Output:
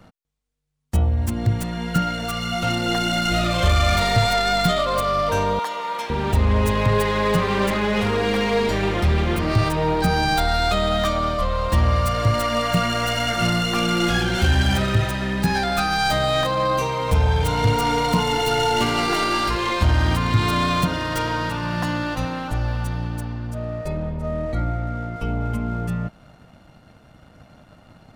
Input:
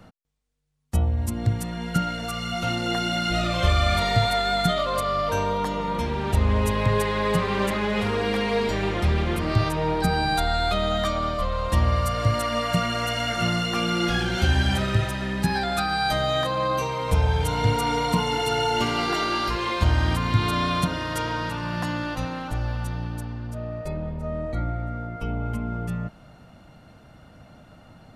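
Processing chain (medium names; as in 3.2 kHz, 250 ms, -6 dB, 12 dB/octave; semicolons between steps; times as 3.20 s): tracing distortion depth 0.093 ms; 5.59–6.10 s: high-pass 730 Hz 12 dB/octave; waveshaping leveller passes 1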